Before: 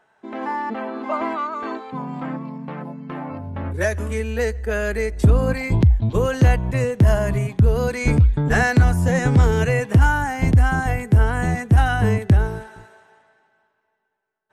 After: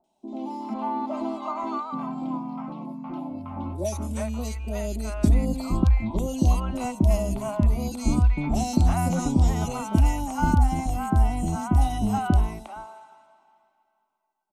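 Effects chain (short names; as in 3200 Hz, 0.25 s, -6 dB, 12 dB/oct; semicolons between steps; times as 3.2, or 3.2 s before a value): fixed phaser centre 460 Hz, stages 6; three bands offset in time lows, highs, mids 40/360 ms, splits 710/2700 Hz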